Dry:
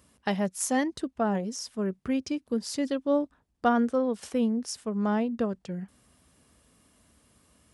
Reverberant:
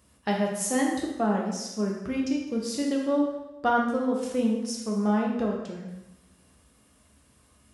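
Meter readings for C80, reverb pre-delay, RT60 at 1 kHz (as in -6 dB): 5.5 dB, 4 ms, 0.95 s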